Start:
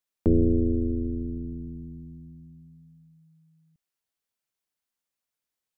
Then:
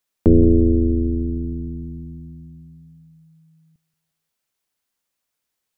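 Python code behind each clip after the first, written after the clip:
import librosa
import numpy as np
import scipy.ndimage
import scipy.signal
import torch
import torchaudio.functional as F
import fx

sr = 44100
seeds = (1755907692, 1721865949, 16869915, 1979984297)

y = fx.echo_feedback(x, sr, ms=177, feedback_pct=38, wet_db=-17.5)
y = y * 10.0 ** (8.0 / 20.0)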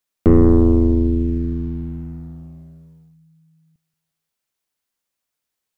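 y = fx.leveller(x, sr, passes=1)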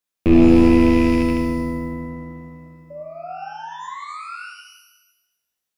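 y = fx.rattle_buzz(x, sr, strikes_db=-16.0, level_db=-16.0)
y = fx.spec_paint(y, sr, seeds[0], shape='rise', start_s=2.9, length_s=1.56, low_hz=570.0, high_hz=1500.0, level_db=-31.0)
y = fx.rev_shimmer(y, sr, seeds[1], rt60_s=1.0, semitones=12, shimmer_db=-8, drr_db=0.5)
y = y * 10.0 ** (-5.0 / 20.0)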